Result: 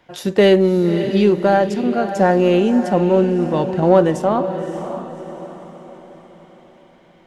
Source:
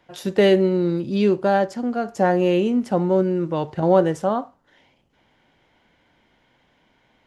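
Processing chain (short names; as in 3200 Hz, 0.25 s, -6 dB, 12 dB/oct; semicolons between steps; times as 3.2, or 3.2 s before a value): in parallel at -9 dB: soft clip -15.5 dBFS, distortion -12 dB; on the sum: diffused feedback echo 0.585 s, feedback 45%, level -10 dB; gain +2 dB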